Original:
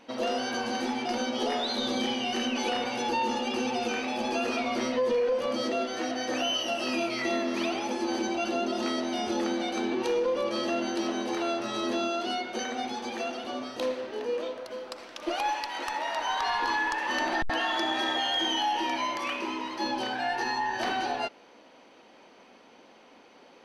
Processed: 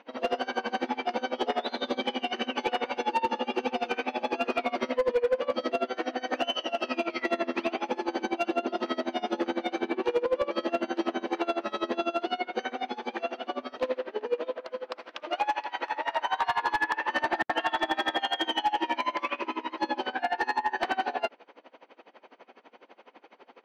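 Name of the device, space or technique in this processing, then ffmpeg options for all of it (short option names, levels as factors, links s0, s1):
helicopter radio: -af "highpass=310,lowpass=2700,aeval=exprs='val(0)*pow(10,-23*(0.5-0.5*cos(2*PI*12*n/s))/20)':c=same,asoftclip=type=hard:threshold=0.0531,volume=2.24"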